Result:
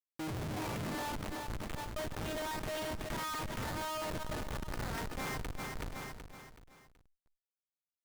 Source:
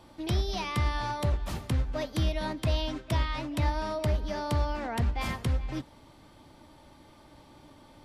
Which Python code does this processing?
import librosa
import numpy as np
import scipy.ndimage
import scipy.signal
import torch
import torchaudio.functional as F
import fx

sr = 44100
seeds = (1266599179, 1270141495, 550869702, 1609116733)

p1 = fx.octave_divider(x, sr, octaves=1, level_db=-1.0)
p2 = fx.high_shelf(p1, sr, hz=8600.0, db=8.0)
p3 = fx.quant_dither(p2, sr, seeds[0], bits=6, dither='none')
p4 = p2 + F.gain(torch.from_numpy(p3), -12.0).numpy()
p5 = fx.bass_treble(p4, sr, bass_db=0, treble_db=-14)
p6 = fx.resonator_bank(p5, sr, root=44, chord='minor', decay_s=0.42)
p7 = fx.filter_sweep_highpass(p6, sr, from_hz=86.0, to_hz=1300.0, start_s=0.66, end_s=1.21, q=1.4)
p8 = fx.schmitt(p7, sr, flips_db=-48.5)
p9 = p8 + fx.echo_feedback(p8, sr, ms=376, feedback_pct=44, wet_db=-15.0, dry=0)
p10 = fx.sustainer(p9, sr, db_per_s=23.0)
y = F.gain(torch.from_numpy(p10), 11.5).numpy()